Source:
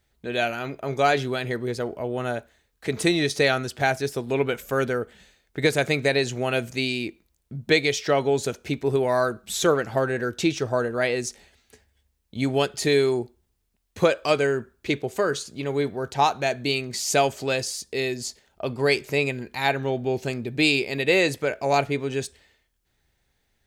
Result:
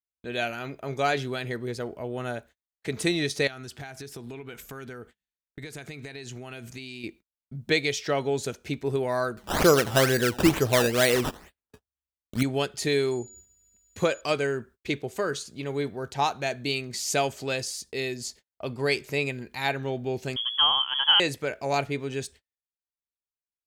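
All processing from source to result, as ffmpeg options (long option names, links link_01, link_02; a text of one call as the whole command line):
ffmpeg -i in.wav -filter_complex "[0:a]asettb=1/sr,asplit=3[link_01][link_02][link_03];[link_01]atrim=end=3.474[link_04];[link_02]atrim=start=3.47:end=7.04,asetpts=PTS-STARTPTS,afade=type=in:duration=0.004:curve=qsin,afade=type=out:start_time=3.566:duration=0.004:curve=qsin,equalizer=frequency=550:width_type=o:width=0.27:gain=-9.5,acompressor=threshold=-31dB:ratio=16:attack=3.2:release=140:knee=1:detection=peak[link_05];[link_03]atrim=start=7.036[link_06];[link_04][link_05]acrossfade=duration=0.004:curve1=hsin:curve2=qsin[link_07];[link_07][link_06]acrossfade=duration=0.004:curve1=qsin:curve2=hsin,asettb=1/sr,asplit=3[link_08][link_09][link_10];[link_08]atrim=end=9.374[link_11];[link_09]atrim=start=9.37:end=12.43,asetpts=PTS-STARTPTS,afade=type=in:duration=0.004:curve=qsin,afade=type=out:start_time=3.056:duration=0.004:curve=qsin,aecho=1:1:84:0.0891,atrim=end_sample=134946,acrusher=samples=14:mix=1:aa=0.000001:lfo=1:lforange=14:lforate=2.2,acontrast=89[link_12];[link_10]atrim=start=12.426[link_13];[link_11][link_12]acrossfade=duration=0.004:curve1=hsin:curve2=qsin[link_14];[link_14][link_13]acrossfade=duration=0.004:curve1=qsin:curve2=hsin,asettb=1/sr,asplit=3[link_15][link_16][link_17];[link_15]atrim=end=13.114[link_18];[link_16]atrim=start=13.11:end=14.21,asetpts=PTS-STARTPTS,afade=type=in:duration=0.004:curve=qsin,afade=type=out:start_time=1.096:duration=0.004:curve=qsin,acompressor=mode=upward:threshold=-38dB:ratio=2.5:attack=3.2:release=140:knee=2.83:detection=peak,aeval=exprs='val(0)+0.00631*sin(2*PI*6900*n/s)':channel_layout=same[link_19];[link_17]atrim=start=14.206[link_20];[link_18][link_19]acrossfade=duration=0.004:curve1=hsin:curve2=qsin[link_21];[link_21][link_20]acrossfade=duration=0.004:curve1=qsin:curve2=hsin,asettb=1/sr,asplit=3[link_22][link_23][link_24];[link_22]atrim=end=20.364[link_25];[link_23]atrim=start=20.36:end=21.2,asetpts=PTS-STARTPTS,afade=type=in:duration=0.004:curve=qsin,afade=type=out:start_time=0.836:duration=0.004:curve=qsin,lowpass=frequency=3000:width_type=q:width=0.5098,lowpass=frequency=3000:width_type=q:width=0.6013,lowpass=frequency=3000:width_type=q:width=0.9,lowpass=frequency=3000:width_type=q:width=2.563,afreqshift=-3500,tiltshelf=frequency=910:gain=-5[link_26];[link_24]atrim=start=21.196[link_27];[link_25][link_26]acrossfade=duration=0.004:curve1=hsin:curve2=qsin[link_28];[link_28][link_27]acrossfade=duration=0.004:curve1=qsin:curve2=hsin,agate=range=-38dB:threshold=-44dB:ratio=16:detection=peak,equalizer=frequency=630:width=0.61:gain=-2.5,volume=-3dB" out.wav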